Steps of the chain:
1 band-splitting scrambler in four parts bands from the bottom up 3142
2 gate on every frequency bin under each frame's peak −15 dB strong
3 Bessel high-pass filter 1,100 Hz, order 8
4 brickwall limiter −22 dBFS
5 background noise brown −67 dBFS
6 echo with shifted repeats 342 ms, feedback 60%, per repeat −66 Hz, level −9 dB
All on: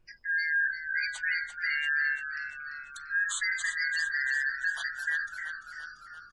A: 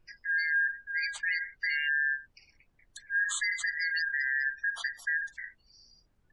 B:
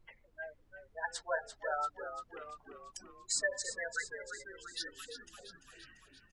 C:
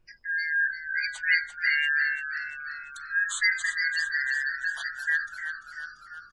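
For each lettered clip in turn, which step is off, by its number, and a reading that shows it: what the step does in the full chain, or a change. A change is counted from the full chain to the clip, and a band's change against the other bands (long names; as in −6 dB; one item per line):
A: 6, echo-to-direct ratio −7.0 dB to none audible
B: 1, 2 kHz band −15.5 dB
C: 4, change in crest factor +5.5 dB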